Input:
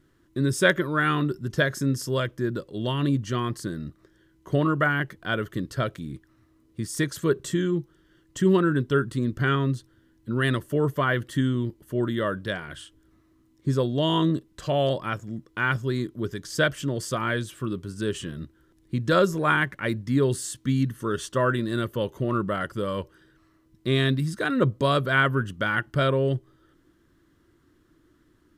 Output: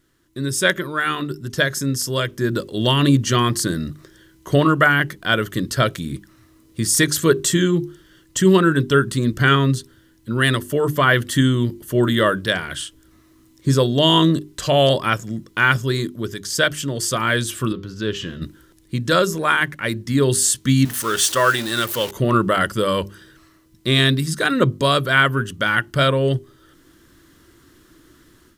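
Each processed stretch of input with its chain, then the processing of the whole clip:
17.72–18.42 s: upward compressor, threshold -34 dBFS + boxcar filter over 5 samples + feedback comb 100 Hz, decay 0.58 s, harmonics odd, mix 50%
20.85–22.11 s: jump at every zero crossing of -37.5 dBFS + bass shelf 440 Hz -12 dB
whole clip: treble shelf 2.6 kHz +10 dB; hum notches 50/100/150/200/250/300/350/400 Hz; level rider gain up to 11.5 dB; trim -1 dB

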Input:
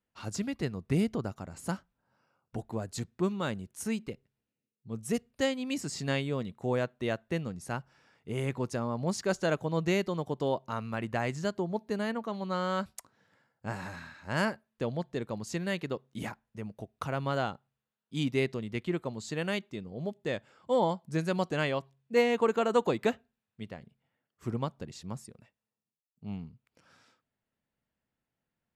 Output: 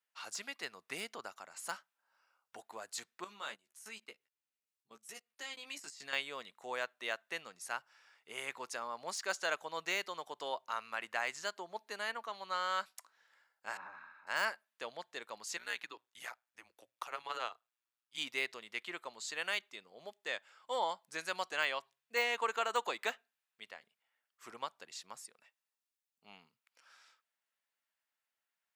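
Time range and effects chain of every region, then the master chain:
3.24–6.13 s: level held to a coarse grid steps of 19 dB + doubling 14 ms -5 dB
13.77–14.27 s: low-pass 1.1 kHz + comb 0.8 ms, depth 35%
15.57–18.18 s: AM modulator 120 Hz, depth 55% + frequency shift -120 Hz
whole clip: de-esser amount 85%; high-pass 1.1 kHz 12 dB/octave; trim +1.5 dB

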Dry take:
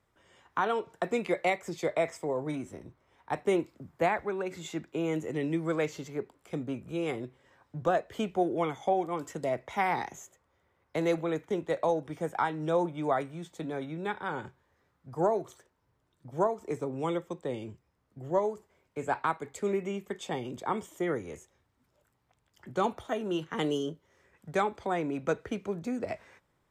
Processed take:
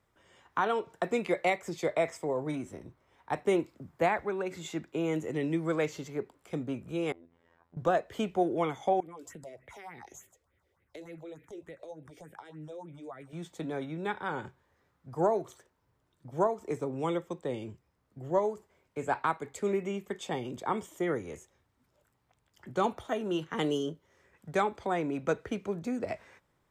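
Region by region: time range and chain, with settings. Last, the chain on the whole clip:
7.12–7.77 s: low-pass 1.4 kHz 6 dB/octave + compression 16:1, threshold -48 dBFS + robot voice 84.2 Hz
9.00–13.33 s: compression 3:1, threshold -43 dBFS + phase shifter stages 4, 3.4 Hz, lowest notch 150–1100 Hz
whole clip: none

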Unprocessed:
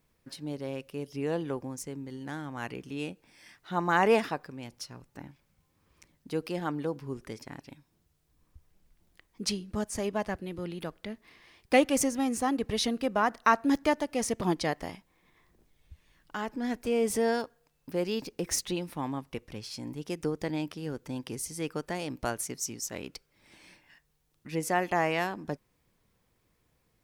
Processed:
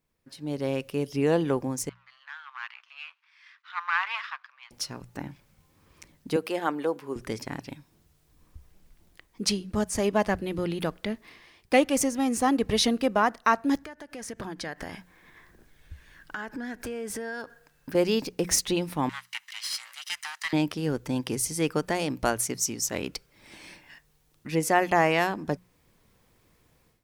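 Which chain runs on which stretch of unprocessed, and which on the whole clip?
1.89–4.71 s: partial rectifier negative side -12 dB + elliptic high-pass 1.1 kHz, stop band 70 dB + distance through air 250 m
6.36–7.16 s: high-pass 370 Hz + peaking EQ 5.1 kHz -6 dB 0.7 oct
13.85–17.95 s: peaking EQ 1.6 kHz +13 dB 0.35 oct + compression, threshold -41 dBFS
19.09–20.53 s: comb filter that takes the minimum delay 1 ms + high-pass 1.5 kHz 24 dB/octave + overdrive pedal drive 10 dB, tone 7.1 kHz, clips at -27.5 dBFS
whole clip: hum notches 60/120/180 Hz; level rider gain up to 16 dB; trim -7.5 dB

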